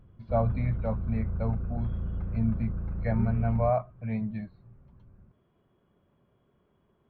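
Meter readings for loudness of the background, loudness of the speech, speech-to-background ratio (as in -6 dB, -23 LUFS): -34.5 LUFS, -31.5 LUFS, 3.0 dB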